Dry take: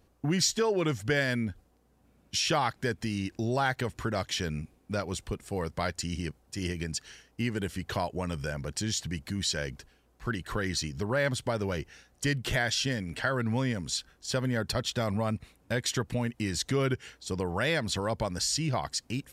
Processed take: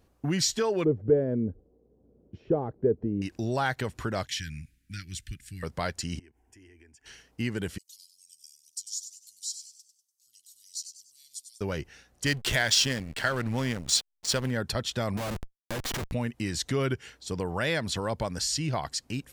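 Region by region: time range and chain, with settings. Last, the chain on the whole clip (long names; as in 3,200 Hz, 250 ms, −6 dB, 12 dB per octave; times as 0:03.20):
0:00.84–0:03.22: gain into a clipping stage and back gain 20.5 dB + low-pass with resonance 440 Hz, resonance Q 3.4
0:04.27–0:05.63: elliptic band-stop filter 280–1,700 Hz + parametric band 240 Hz −12 dB 0.94 octaves
0:06.19–0:07.06: high-shelf EQ 10,000 Hz −12 dB + downward compressor 16 to 1, threshold −47 dBFS + phaser with its sweep stopped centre 820 Hz, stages 8
0:07.78–0:11.61: inverse Chebyshev high-pass filter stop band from 1,700 Hz, stop band 60 dB + echo with shifted repeats 97 ms, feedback 41%, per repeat +130 Hz, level −9 dB
0:12.26–0:14.51: high-shelf EQ 2,500 Hz +10.5 dB + slack as between gear wheels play −30.5 dBFS
0:15.17–0:16.12: comparator with hysteresis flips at −37.5 dBFS + one half of a high-frequency compander encoder only
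whole clip: no processing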